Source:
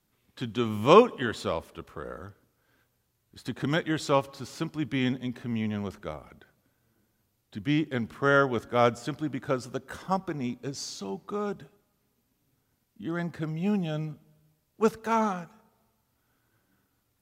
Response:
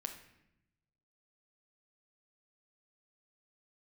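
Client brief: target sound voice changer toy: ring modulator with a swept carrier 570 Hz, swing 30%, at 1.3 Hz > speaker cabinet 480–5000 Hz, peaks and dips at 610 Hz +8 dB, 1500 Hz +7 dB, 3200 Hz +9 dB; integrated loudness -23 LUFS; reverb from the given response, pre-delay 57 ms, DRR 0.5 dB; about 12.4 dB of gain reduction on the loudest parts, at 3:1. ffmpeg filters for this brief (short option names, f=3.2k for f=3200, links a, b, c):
-filter_complex "[0:a]acompressor=threshold=-29dB:ratio=3,asplit=2[a][b];[1:a]atrim=start_sample=2205,adelay=57[c];[b][c]afir=irnorm=-1:irlink=0,volume=1dB[d];[a][d]amix=inputs=2:normalize=0,aeval=exprs='val(0)*sin(2*PI*570*n/s+570*0.3/1.3*sin(2*PI*1.3*n/s))':c=same,highpass=480,equalizer=f=610:t=q:w=4:g=8,equalizer=f=1.5k:t=q:w=4:g=7,equalizer=f=3.2k:t=q:w=4:g=9,lowpass=f=5k:w=0.5412,lowpass=f=5k:w=1.3066,volume=10dB"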